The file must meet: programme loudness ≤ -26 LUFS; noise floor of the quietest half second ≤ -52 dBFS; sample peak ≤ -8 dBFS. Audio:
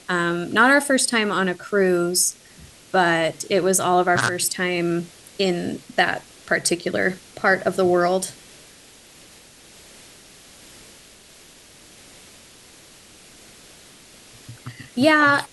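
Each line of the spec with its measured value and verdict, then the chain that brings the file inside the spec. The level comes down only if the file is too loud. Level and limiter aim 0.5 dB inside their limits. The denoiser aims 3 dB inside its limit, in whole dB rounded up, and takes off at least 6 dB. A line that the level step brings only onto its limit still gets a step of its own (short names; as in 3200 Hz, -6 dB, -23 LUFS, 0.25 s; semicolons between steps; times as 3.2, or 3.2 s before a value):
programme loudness -20.0 LUFS: fail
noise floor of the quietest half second -48 dBFS: fail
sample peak -4.0 dBFS: fail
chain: gain -6.5 dB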